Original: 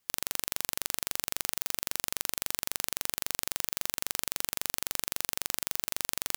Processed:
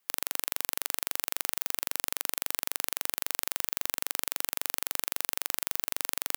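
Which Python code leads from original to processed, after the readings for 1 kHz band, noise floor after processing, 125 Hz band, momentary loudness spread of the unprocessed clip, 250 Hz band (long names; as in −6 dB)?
+1.5 dB, −75 dBFS, can't be measured, 0 LU, −3.5 dB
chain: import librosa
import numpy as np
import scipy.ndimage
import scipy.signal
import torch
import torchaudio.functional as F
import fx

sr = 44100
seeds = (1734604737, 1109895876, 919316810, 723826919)

y = fx.highpass(x, sr, hz=510.0, slope=6)
y = fx.peak_eq(y, sr, hz=5800.0, db=-5.0, octaves=2.0)
y = F.gain(torch.from_numpy(y), 3.0).numpy()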